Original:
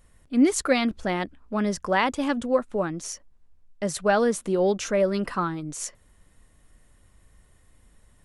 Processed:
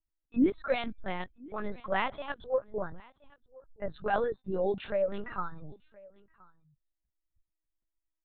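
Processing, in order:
low-pass that shuts in the quiet parts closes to 2,400 Hz, open at −22.5 dBFS
noise reduction from a noise print of the clip's start 27 dB
low-shelf EQ 120 Hz +5.5 dB
tuned comb filter 790 Hz, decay 0.32 s, mix 30%
flanger 0.53 Hz, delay 1.4 ms, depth 3 ms, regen −66%
single-tap delay 1,024 ms −24 dB
linear-prediction vocoder at 8 kHz pitch kept

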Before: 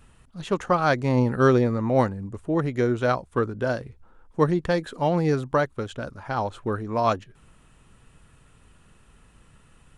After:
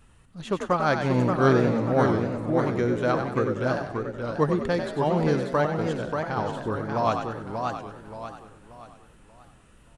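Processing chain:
echo with shifted repeats 95 ms, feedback 42%, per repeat +51 Hz, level −7.5 dB
feedback echo with a swinging delay time 581 ms, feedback 38%, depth 156 cents, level −5 dB
level −2.5 dB

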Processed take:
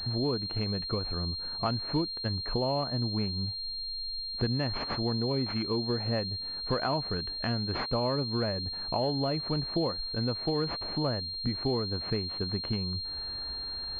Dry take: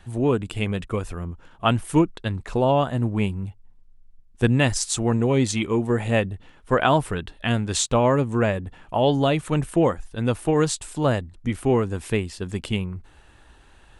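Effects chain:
downward compressor 3 to 1, threshold −39 dBFS, peak gain reduction 19 dB
switching amplifier with a slow clock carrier 4,200 Hz
level +6 dB

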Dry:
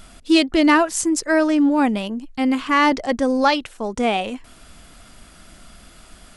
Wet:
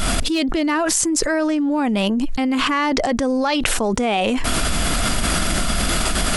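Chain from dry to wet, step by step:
gain into a clipping stage and back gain 6 dB
envelope flattener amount 100%
level −7.5 dB

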